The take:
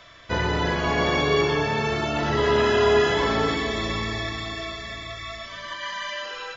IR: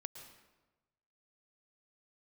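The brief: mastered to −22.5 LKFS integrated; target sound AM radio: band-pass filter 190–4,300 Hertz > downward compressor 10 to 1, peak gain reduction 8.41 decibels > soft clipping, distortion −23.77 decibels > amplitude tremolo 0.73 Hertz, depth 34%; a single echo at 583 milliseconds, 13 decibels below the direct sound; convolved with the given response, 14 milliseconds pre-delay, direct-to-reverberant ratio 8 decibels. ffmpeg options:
-filter_complex "[0:a]aecho=1:1:583:0.224,asplit=2[link_01][link_02];[1:a]atrim=start_sample=2205,adelay=14[link_03];[link_02][link_03]afir=irnorm=-1:irlink=0,volume=-4.5dB[link_04];[link_01][link_04]amix=inputs=2:normalize=0,highpass=190,lowpass=4300,acompressor=threshold=-21dB:ratio=10,asoftclip=threshold=-16dB,tremolo=f=0.73:d=0.34,volume=6.5dB"

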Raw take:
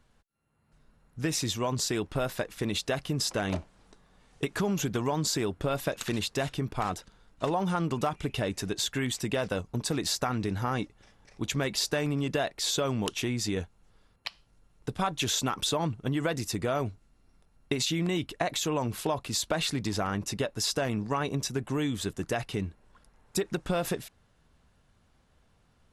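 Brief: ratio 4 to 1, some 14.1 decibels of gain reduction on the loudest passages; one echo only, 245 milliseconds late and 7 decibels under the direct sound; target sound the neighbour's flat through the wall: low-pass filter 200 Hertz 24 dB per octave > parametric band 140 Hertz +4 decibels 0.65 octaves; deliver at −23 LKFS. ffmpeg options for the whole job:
ffmpeg -i in.wav -af "acompressor=threshold=-43dB:ratio=4,lowpass=frequency=200:width=0.5412,lowpass=frequency=200:width=1.3066,equalizer=frequency=140:width_type=o:width=0.65:gain=4,aecho=1:1:245:0.447,volume=25.5dB" out.wav

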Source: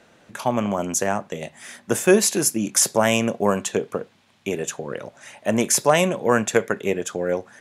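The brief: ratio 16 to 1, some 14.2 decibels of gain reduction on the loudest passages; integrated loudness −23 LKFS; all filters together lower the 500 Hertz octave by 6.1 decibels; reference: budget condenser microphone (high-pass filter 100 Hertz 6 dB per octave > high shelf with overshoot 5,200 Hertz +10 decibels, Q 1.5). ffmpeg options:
ffmpeg -i in.wav -af "equalizer=frequency=500:width_type=o:gain=-7.5,acompressor=threshold=-28dB:ratio=16,highpass=frequency=100:poles=1,highshelf=frequency=5200:width_type=q:width=1.5:gain=10,volume=3.5dB" out.wav

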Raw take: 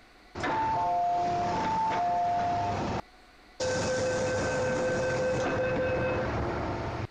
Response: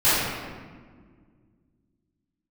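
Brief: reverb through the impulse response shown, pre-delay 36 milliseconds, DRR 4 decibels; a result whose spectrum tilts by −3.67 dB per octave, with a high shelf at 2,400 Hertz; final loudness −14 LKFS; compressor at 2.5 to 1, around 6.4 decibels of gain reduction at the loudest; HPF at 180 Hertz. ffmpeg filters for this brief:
-filter_complex "[0:a]highpass=180,highshelf=frequency=2400:gain=6.5,acompressor=threshold=-35dB:ratio=2.5,asplit=2[link_01][link_02];[1:a]atrim=start_sample=2205,adelay=36[link_03];[link_02][link_03]afir=irnorm=-1:irlink=0,volume=-24dB[link_04];[link_01][link_04]amix=inputs=2:normalize=0,volume=19dB"

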